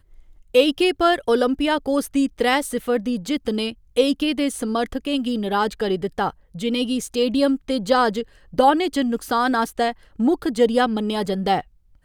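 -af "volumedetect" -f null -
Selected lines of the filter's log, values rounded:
mean_volume: -21.3 dB
max_volume: -4.2 dB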